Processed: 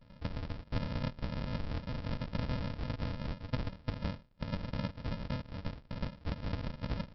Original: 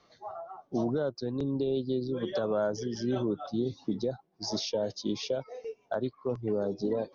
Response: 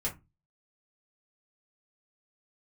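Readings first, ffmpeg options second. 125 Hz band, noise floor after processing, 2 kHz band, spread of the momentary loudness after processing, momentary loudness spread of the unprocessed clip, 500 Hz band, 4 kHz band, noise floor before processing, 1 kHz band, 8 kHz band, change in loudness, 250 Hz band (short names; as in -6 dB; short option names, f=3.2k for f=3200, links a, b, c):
+2.5 dB, -59 dBFS, +0.5 dB, 5 LU, 7 LU, -15.5 dB, -7.5 dB, -68 dBFS, -4.5 dB, n/a, -7.0 dB, -8.0 dB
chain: -filter_complex "[0:a]acompressor=threshold=-43dB:ratio=4,asplit=2[a][b];[b]equalizer=f=300:t=o:w=0.85:g=5.5[c];[1:a]atrim=start_sample=2205,adelay=57[d];[c][d]afir=irnorm=-1:irlink=0,volume=-24dB[e];[a][e]amix=inputs=2:normalize=0,afftfilt=real='hypot(re,im)*cos(2*PI*random(0))':imag='hypot(re,im)*sin(2*PI*random(1))':win_size=512:overlap=0.75,bandreject=f=203.7:t=h:w=4,bandreject=f=407.4:t=h:w=4,bandreject=f=611.1:t=h:w=4,bandreject=f=814.8:t=h:w=4,bandreject=f=1.0185k:t=h:w=4,aresample=11025,acrusher=samples=29:mix=1:aa=0.000001,aresample=44100,volume=13.5dB"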